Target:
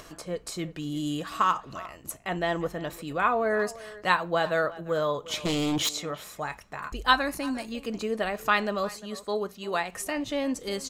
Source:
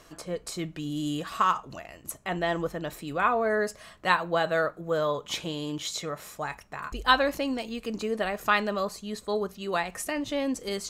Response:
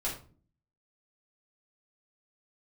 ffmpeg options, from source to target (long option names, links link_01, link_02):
-filter_complex "[0:a]asettb=1/sr,asplit=3[link_01][link_02][link_03];[link_01]atrim=end=5.454[link_04];[link_02]atrim=start=5.45:end=5.89,asetpts=PTS-STARTPTS,afade=type=in:duration=0.004:curve=qsin,afade=type=out:start_time=0.436:duration=0.004:curve=qsin,aeval=exprs='0.0794*sin(PI/2*2.24*val(0)/0.0794)':channel_layout=same[link_05];[link_03]atrim=start=5.886[link_06];[link_04][link_05]acrossfade=duration=0.004:curve1=hsin:curve2=qsin[link_07];[link_07][link_06]acrossfade=duration=0.004:curve1=qsin:curve2=hsin,asettb=1/sr,asplit=3[link_08][link_09][link_10];[link_08]atrim=end=8.944[link_11];[link_09]atrim=start=8.94:end=9.93,asetpts=PTS-STARTPTS,afade=type=in:duration=0.004:curve=qsin,afade=type=out:start_time=0.986:duration=0.004:curve=qsin,lowshelf=frequency=120:gain=-10[link_12];[link_10]atrim=start=9.926[link_13];[link_11][link_12]acrossfade=duration=0.004:curve1=hsin:curve2=qsin[link_14];[link_14][link_13]acrossfade=duration=0.004:curve1=qsin:curve2=hsin,asplit=2[link_15][link_16];[link_16]adelay=350,highpass=300,lowpass=3400,asoftclip=type=hard:threshold=-16dB,volume=-17dB[link_17];[link_15][link_17]amix=inputs=2:normalize=0,acompressor=mode=upward:threshold=-41dB:ratio=2.5,asettb=1/sr,asplit=3[link_18][link_19][link_20];[link_18]atrim=end=7.134[link_21];[link_19]atrim=start=7.13:end=7.72,asetpts=PTS-STARTPTS,afade=type=in:duration=0.004:curve=qsin,afade=type=out:start_time=0.586:duration=0.004:curve=qsin,equalizer=frequency=500:width_type=o:width=0.33:gain=-12,equalizer=frequency=3150:width_type=o:width=0.33:gain=-9,equalizer=frequency=10000:width_type=o:width=0.33:gain=11[link_22];[link_20]atrim=start=7.716[link_23];[link_21][link_22]acrossfade=duration=0.004:curve1=hsin:curve2=qsin[link_24];[link_24][link_23]acrossfade=duration=0.004:curve1=qsin:curve2=hsin"